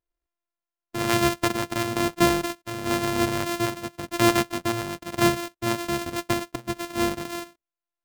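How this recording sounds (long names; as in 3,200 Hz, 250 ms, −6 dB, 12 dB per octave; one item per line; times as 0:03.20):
a buzz of ramps at a fixed pitch in blocks of 128 samples
tremolo triangle 1 Hz, depth 50%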